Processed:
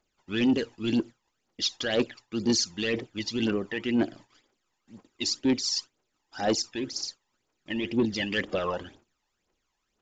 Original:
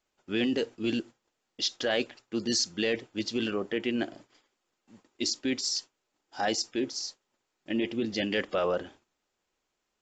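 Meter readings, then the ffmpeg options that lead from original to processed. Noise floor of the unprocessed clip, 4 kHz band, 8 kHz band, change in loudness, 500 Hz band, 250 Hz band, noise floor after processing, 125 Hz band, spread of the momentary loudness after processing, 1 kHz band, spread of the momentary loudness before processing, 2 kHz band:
−82 dBFS, +1.5 dB, +1.0 dB, +2.0 dB, +0.5 dB, +3.5 dB, −79 dBFS, +5.5 dB, 8 LU, 0.0 dB, 7 LU, +1.0 dB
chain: -af "aphaser=in_gain=1:out_gain=1:delay=1.2:decay=0.65:speed=2:type=triangular,asoftclip=type=tanh:threshold=-16dB,aresample=16000,aresample=44100"

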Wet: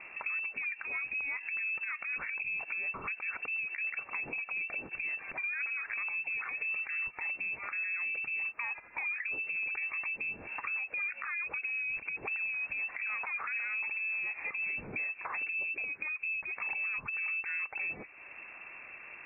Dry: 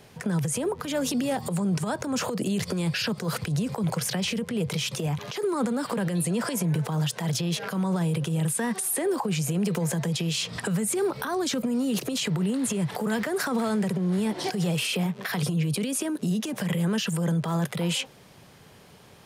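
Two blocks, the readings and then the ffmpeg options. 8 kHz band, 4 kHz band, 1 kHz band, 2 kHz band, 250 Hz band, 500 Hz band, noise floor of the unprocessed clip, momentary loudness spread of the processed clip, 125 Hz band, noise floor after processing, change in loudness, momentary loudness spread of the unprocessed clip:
below −40 dB, below −40 dB, −11.5 dB, +4.5 dB, −32.5 dB, −25.0 dB, −52 dBFS, 3 LU, below −30 dB, −51 dBFS, −6.5 dB, 3 LU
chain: -af "lowpass=frequency=2400:width_type=q:width=0.5098,lowpass=frequency=2400:width_type=q:width=0.6013,lowpass=frequency=2400:width_type=q:width=0.9,lowpass=frequency=2400:width_type=q:width=2.563,afreqshift=-2800,acompressor=threshold=-46dB:ratio=2.5,volume=4.5dB"

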